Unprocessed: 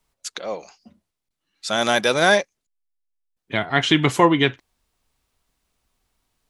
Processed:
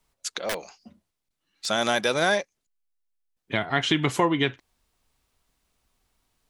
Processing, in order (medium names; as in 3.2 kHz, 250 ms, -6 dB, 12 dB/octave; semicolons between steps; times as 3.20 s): compression 2:1, threshold -23 dBFS, peak gain reduction 8 dB; 0.49–1.66 s: integer overflow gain 22 dB